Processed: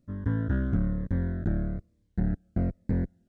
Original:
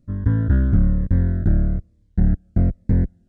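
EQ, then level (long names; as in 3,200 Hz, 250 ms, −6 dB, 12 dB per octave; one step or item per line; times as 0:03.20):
low-shelf EQ 130 Hz −11 dB
−3.5 dB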